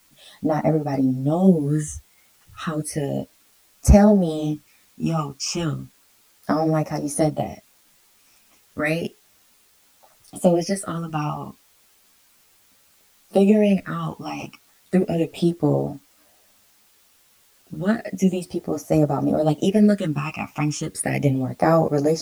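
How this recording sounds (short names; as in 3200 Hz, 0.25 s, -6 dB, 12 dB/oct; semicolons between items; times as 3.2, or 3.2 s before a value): phasing stages 8, 0.33 Hz, lowest notch 520–3200 Hz; a quantiser's noise floor 10-bit, dither triangular; a shimmering, thickened sound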